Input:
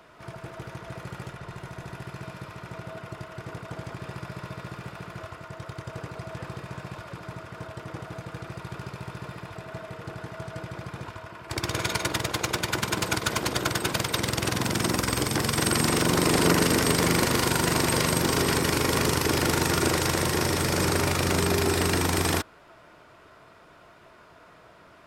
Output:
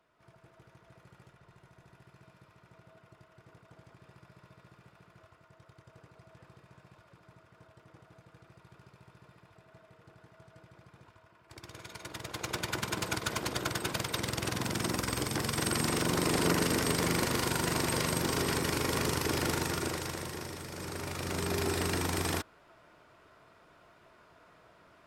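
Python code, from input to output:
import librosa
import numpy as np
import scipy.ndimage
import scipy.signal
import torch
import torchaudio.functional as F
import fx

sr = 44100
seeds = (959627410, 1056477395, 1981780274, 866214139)

y = fx.gain(x, sr, db=fx.line((11.9, -19.5), (12.57, -7.0), (19.49, -7.0), (20.68, -18.0), (21.61, -7.5)))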